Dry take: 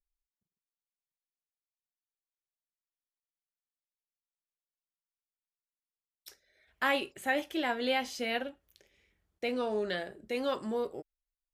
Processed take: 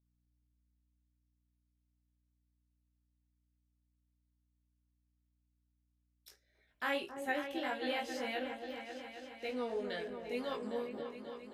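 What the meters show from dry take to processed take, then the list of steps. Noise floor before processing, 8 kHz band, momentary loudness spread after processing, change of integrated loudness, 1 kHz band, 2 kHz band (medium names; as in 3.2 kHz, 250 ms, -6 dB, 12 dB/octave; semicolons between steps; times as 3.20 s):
under -85 dBFS, -7.0 dB, 8 LU, -6.5 dB, -5.5 dB, -6.0 dB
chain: chorus 1.8 Hz, delay 18.5 ms, depth 3 ms; hum 60 Hz, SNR 34 dB; delay with an opening low-pass 269 ms, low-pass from 750 Hz, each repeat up 2 oct, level -6 dB; trim -4 dB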